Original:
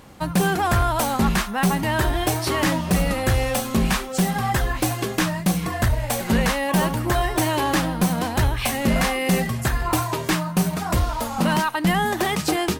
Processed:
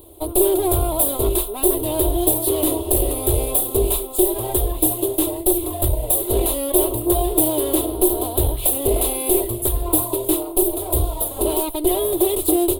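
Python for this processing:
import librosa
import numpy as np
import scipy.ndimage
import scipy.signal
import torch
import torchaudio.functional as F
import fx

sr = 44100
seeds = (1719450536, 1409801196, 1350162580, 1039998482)

y = fx.lower_of_two(x, sr, delay_ms=3.0)
y = fx.curve_eq(y, sr, hz=(110.0, 190.0, 360.0, 570.0, 1100.0, 1700.0, 3600.0, 5700.0, 10000.0), db=(0, -22, 7, 2, -11, -28, -1, -21, 12))
y = y * librosa.db_to_amplitude(2.5)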